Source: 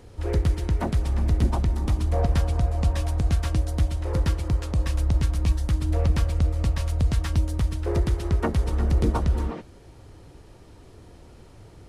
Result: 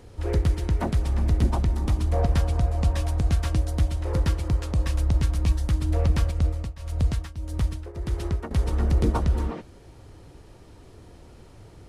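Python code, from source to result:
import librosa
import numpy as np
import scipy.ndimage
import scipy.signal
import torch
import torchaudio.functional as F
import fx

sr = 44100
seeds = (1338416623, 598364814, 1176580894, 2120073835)

y = fx.tremolo_shape(x, sr, shape='triangle', hz=1.7, depth_pct=90, at=(6.31, 8.51))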